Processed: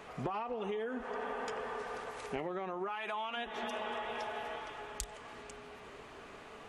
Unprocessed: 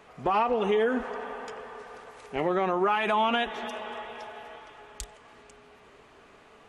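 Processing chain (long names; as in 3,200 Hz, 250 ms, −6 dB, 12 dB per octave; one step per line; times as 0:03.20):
0:02.88–0:03.36: high-pass filter 380 Hz → 1,100 Hz 6 dB per octave
downward compressor 16 to 1, threshold −38 dBFS, peak gain reduction 18.5 dB
level +3.5 dB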